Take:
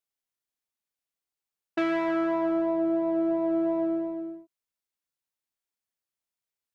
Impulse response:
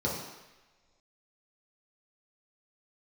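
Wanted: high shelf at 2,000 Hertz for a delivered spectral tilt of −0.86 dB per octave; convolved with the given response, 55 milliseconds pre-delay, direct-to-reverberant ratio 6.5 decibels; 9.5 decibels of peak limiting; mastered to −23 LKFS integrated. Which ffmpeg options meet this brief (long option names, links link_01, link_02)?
-filter_complex "[0:a]highshelf=frequency=2000:gain=4,alimiter=level_in=2dB:limit=-24dB:level=0:latency=1,volume=-2dB,asplit=2[link_01][link_02];[1:a]atrim=start_sample=2205,adelay=55[link_03];[link_02][link_03]afir=irnorm=-1:irlink=0,volume=-15dB[link_04];[link_01][link_04]amix=inputs=2:normalize=0,volume=12.5dB"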